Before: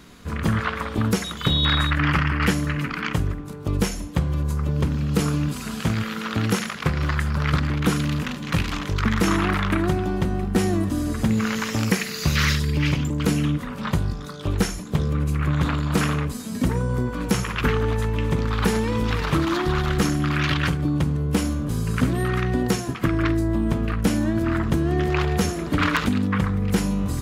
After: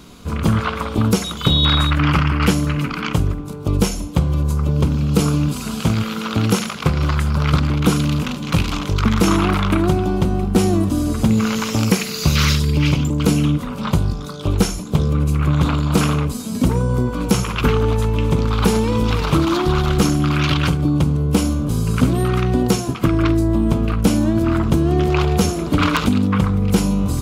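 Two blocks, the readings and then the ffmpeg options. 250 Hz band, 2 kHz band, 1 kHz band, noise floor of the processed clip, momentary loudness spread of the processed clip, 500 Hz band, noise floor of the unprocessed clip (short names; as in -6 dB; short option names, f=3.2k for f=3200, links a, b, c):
+5.5 dB, 0.0 dB, +4.5 dB, -28 dBFS, 4 LU, +5.5 dB, -33 dBFS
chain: -af "equalizer=f=1.8k:w=3.6:g=-11.5,volume=5.5dB"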